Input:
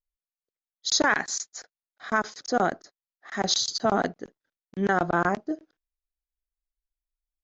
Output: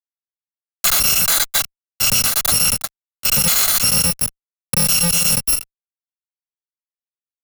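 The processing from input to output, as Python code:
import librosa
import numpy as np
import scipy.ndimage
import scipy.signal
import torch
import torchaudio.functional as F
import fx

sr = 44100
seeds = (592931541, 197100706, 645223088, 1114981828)

y = fx.bit_reversed(x, sr, seeds[0], block=128)
y = fx.fuzz(y, sr, gain_db=49.0, gate_db=-49.0)
y = fx.band_squash(y, sr, depth_pct=70)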